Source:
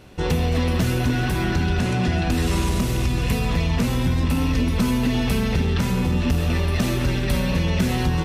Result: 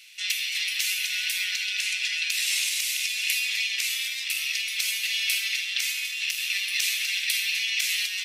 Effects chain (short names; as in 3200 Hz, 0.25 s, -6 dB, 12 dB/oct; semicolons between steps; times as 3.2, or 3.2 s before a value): elliptic high-pass 2200 Hz, stop band 80 dB; gain +8 dB